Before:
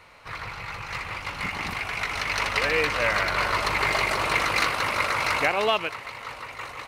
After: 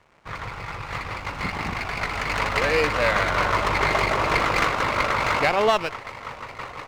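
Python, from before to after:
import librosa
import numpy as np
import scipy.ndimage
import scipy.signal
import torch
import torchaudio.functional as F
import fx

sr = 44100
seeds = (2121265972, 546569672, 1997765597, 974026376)

y = np.sign(x) * np.maximum(np.abs(x) - 10.0 ** (-50.0 / 20.0), 0.0)
y = fx.spacing_loss(y, sr, db_at_10k=22)
y = fx.running_max(y, sr, window=5)
y = F.gain(torch.from_numpy(y), 6.5).numpy()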